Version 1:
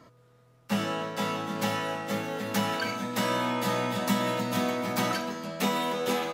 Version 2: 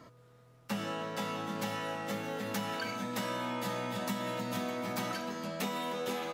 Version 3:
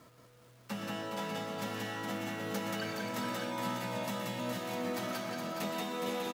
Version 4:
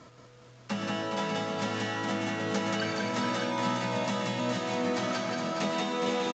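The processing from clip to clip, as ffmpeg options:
ffmpeg -i in.wav -af "acompressor=threshold=-35dB:ratio=3" out.wav
ffmpeg -i in.wav -filter_complex "[0:a]asplit=2[link_01][link_02];[link_02]aecho=0:1:119.5|180.8:0.316|0.794[link_03];[link_01][link_03]amix=inputs=2:normalize=0,acrusher=bits=9:mix=0:aa=0.000001,asplit=2[link_04][link_05];[link_05]aecho=0:1:416:0.501[link_06];[link_04][link_06]amix=inputs=2:normalize=0,volume=-4dB" out.wav
ffmpeg -i in.wav -af "aresample=16000,aresample=44100,volume=6.5dB" out.wav

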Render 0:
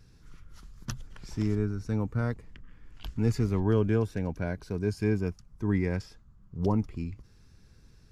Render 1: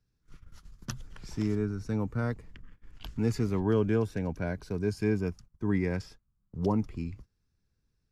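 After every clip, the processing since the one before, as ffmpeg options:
ffmpeg -i in.wav -filter_complex "[0:a]agate=range=-20dB:threshold=-46dB:ratio=16:detection=peak,acrossover=split=120[link_01][link_02];[link_01]alimiter=level_in=12dB:limit=-24dB:level=0:latency=1,volume=-12dB[link_03];[link_03][link_02]amix=inputs=2:normalize=0" out.wav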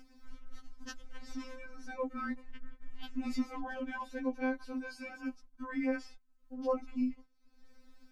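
ffmpeg -i in.wav -af "acompressor=mode=upward:threshold=-37dB:ratio=2.5,highshelf=frequency=5200:gain=-11,afftfilt=real='re*3.46*eq(mod(b,12),0)':imag='im*3.46*eq(mod(b,12),0)':win_size=2048:overlap=0.75,volume=2dB" out.wav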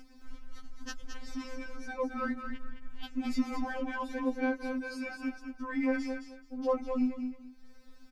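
ffmpeg -i in.wav -filter_complex "[0:a]asplit=2[link_01][link_02];[link_02]asoftclip=type=tanh:threshold=-37.5dB,volume=-11dB[link_03];[link_01][link_03]amix=inputs=2:normalize=0,aecho=1:1:216|432|648:0.447|0.0938|0.0197,volume=2dB" out.wav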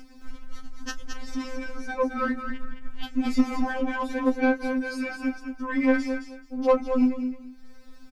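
ffmpeg -i in.wav -filter_complex "[0:a]aeval=exprs='0.119*(cos(1*acos(clip(val(0)/0.119,-1,1)))-cos(1*PI/2))+0.00944*(cos(3*acos(clip(val(0)/0.119,-1,1)))-cos(3*PI/2))+0.00422*(cos(6*acos(clip(val(0)/0.119,-1,1)))-cos(6*PI/2))':channel_layout=same,asplit=2[link_01][link_02];[link_02]adelay=27,volume=-13dB[link_03];[link_01][link_03]amix=inputs=2:normalize=0,volume=9dB" out.wav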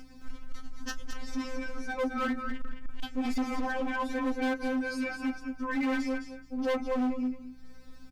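ffmpeg -i in.wav -af "aeval=exprs='val(0)+0.00126*(sin(2*PI*60*n/s)+sin(2*PI*2*60*n/s)/2+sin(2*PI*3*60*n/s)/3+sin(2*PI*4*60*n/s)/4+sin(2*PI*5*60*n/s)/5)':channel_layout=same,asoftclip=type=hard:threshold=-24dB,volume=-2dB" out.wav

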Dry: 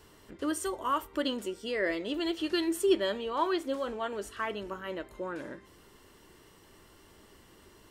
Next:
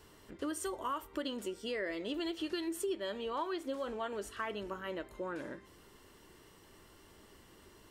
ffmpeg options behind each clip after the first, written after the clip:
ffmpeg -i in.wav -af "acompressor=threshold=-32dB:ratio=5,volume=-2dB" out.wav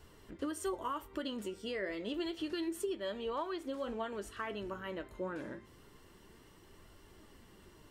ffmpeg -i in.wav -af "bass=frequency=250:gain=5,treble=frequency=4000:gain=-2,flanger=delay=1.3:depth=9.8:regen=69:speed=0.29:shape=triangular,volume=3dB" out.wav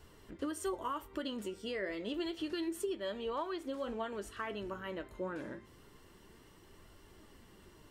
ffmpeg -i in.wav -af anull out.wav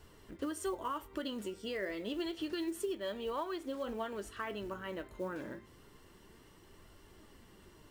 ffmpeg -i in.wav -af "acrusher=bits=7:mode=log:mix=0:aa=0.000001" out.wav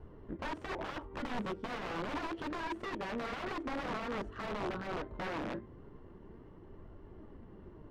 ffmpeg -i in.wav -af "aeval=exprs='(mod(75*val(0)+1,2)-1)/75':channel_layout=same,adynamicsmooth=sensitivity=7:basefreq=840,volume=8dB" out.wav

